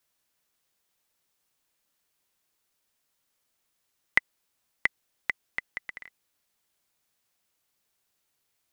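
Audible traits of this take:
background noise floor −77 dBFS
spectral slope −2.0 dB per octave

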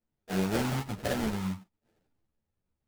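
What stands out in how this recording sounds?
a buzz of ramps at a fixed pitch in blocks of 8 samples
phaser sweep stages 8, 0.72 Hz, lowest notch 400–1,000 Hz
aliases and images of a low sample rate 1,100 Hz, jitter 20%
a shimmering, thickened sound

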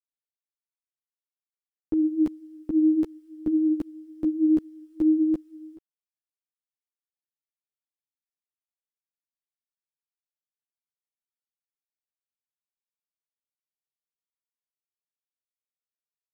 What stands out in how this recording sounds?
a quantiser's noise floor 12 bits, dither none
a shimmering, thickened sound

